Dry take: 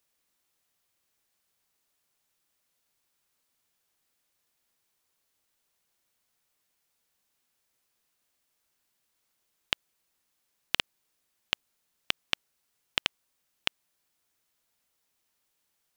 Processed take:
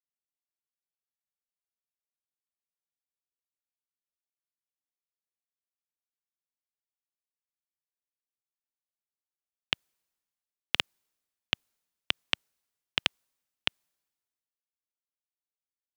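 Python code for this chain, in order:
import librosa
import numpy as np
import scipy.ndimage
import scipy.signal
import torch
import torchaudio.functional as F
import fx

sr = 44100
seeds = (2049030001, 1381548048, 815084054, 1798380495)

y = fx.band_widen(x, sr, depth_pct=70)
y = y * 10.0 ** (-1.5 / 20.0)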